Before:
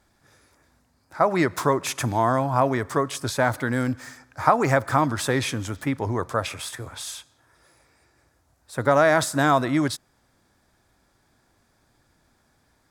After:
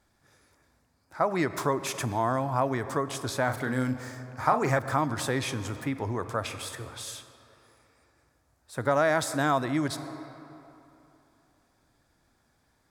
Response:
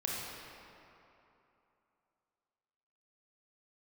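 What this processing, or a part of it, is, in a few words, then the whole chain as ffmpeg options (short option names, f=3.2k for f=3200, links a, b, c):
ducked reverb: -filter_complex "[0:a]asplit=3[a][b][c];[1:a]atrim=start_sample=2205[d];[b][d]afir=irnorm=-1:irlink=0[e];[c]apad=whole_len=569202[f];[e][f]sidechaincompress=threshold=-28dB:ratio=8:attack=37:release=118,volume=-12dB[g];[a][g]amix=inputs=2:normalize=0,asettb=1/sr,asplit=3[h][i][j];[h]atrim=end=3.444[k];[i]atrim=start=3.44:end=4.79,asetpts=PTS-STARTPTS,afade=t=in:d=0.004:c=qsin,afade=t=out:st=1.346:d=0.004:c=qsin,asplit=2[l][m];[m]adelay=39,volume=-7dB[n];[l][n]amix=inputs=2:normalize=0,atrim=end_sample=59535[o];[j]atrim=start=4.786[p];[k][o]acrossfade=d=0.004:c1=hsin:c2=qsin[q];[q][p]acrossfade=d=0.004:c1=qsin:c2=hsin,volume=-6.5dB"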